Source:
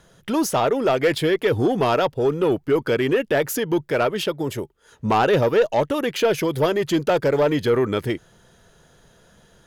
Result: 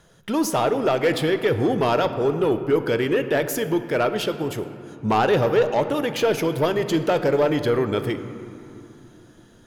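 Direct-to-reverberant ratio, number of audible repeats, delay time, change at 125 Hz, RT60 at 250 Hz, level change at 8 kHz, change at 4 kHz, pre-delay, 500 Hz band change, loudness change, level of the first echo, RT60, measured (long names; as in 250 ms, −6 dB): 9.0 dB, no echo audible, no echo audible, −0.5 dB, 4.0 s, −1.5 dB, −1.0 dB, 7 ms, −1.0 dB, −1.0 dB, no echo audible, 2.9 s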